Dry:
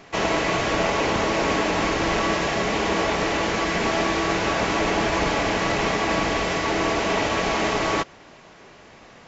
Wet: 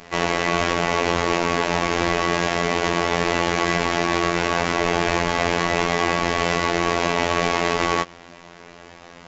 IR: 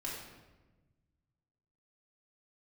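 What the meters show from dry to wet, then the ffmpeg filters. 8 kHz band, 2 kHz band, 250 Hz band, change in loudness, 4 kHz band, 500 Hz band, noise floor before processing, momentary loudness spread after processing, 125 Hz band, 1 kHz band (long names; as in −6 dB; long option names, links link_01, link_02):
can't be measured, +1.5 dB, +0.5 dB, +1.5 dB, +1.0 dB, +1.0 dB, −48 dBFS, 1 LU, +2.5 dB, +2.0 dB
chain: -af "alimiter=limit=-16dB:level=0:latency=1:release=53,aeval=exprs='0.158*(cos(1*acos(clip(val(0)/0.158,-1,1)))-cos(1*PI/2))+0.00126*(cos(8*acos(clip(val(0)/0.158,-1,1)))-cos(8*PI/2))':channel_layout=same,afftfilt=real='hypot(re,im)*cos(PI*b)':imag='0':win_size=2048:overlap=0.75,volume=7dB"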